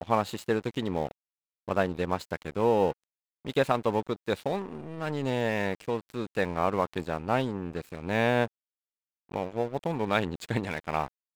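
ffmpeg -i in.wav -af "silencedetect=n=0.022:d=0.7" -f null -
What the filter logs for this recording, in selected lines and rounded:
silence_start: 8.46
silence_end: 9.32 | silence_duration: 0.85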